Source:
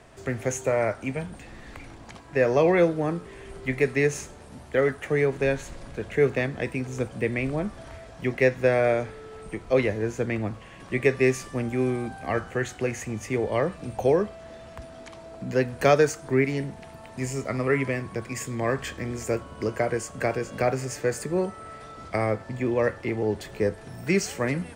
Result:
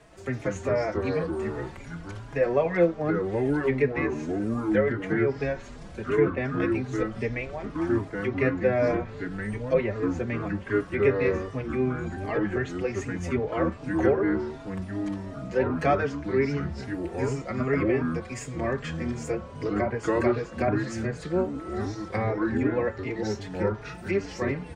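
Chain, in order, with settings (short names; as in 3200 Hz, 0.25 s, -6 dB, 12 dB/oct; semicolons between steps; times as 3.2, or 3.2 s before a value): treble ducked by the level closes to 2300 Hz, closed at -20.5 dBFS; echoes that change speed 0.11 s, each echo -4 st, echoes 2; endless flanger 4.4 ms +2.6 Hz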